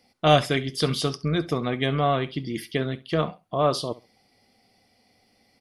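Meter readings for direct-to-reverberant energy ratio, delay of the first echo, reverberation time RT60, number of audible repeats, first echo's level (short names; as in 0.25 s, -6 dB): none, 67 ms, none, 2, -19.0 dB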